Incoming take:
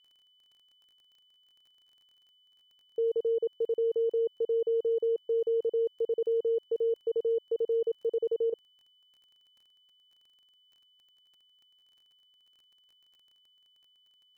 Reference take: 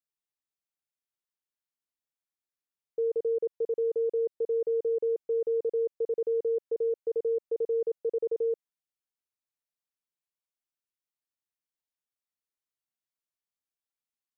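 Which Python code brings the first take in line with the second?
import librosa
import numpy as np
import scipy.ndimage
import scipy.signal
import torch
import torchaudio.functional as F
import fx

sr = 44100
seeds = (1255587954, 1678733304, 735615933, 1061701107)

y = fx.fix_declick_ar(x, sr, threshold=6.5)
y = fx.notch(y, sr, hz=3000.0, q=30.0)
y = fx.fix_interpolate(y, sr, at_s=(8.5,), length_ms=24.0)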